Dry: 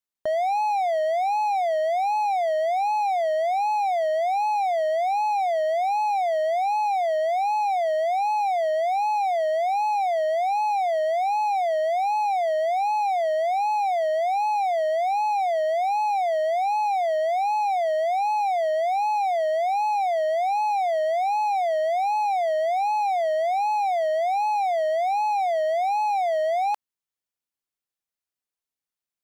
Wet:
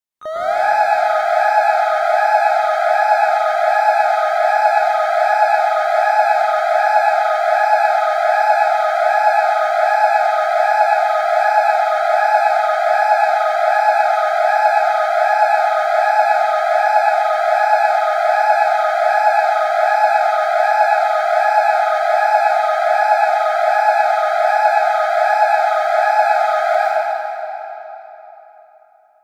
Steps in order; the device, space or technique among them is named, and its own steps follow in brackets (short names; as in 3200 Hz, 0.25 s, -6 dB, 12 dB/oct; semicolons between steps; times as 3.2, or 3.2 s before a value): shimmer-style reverb (harmoniser +12 st -9 dB; reverb RT60 3.7 s, pre-delay 0.101 s, DRR -9 dB); gain -1.5 dB